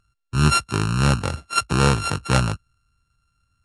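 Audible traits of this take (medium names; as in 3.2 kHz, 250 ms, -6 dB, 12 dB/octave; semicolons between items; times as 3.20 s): a buzz of ramps at a fixed pitch in blocks of 32 samples; MP3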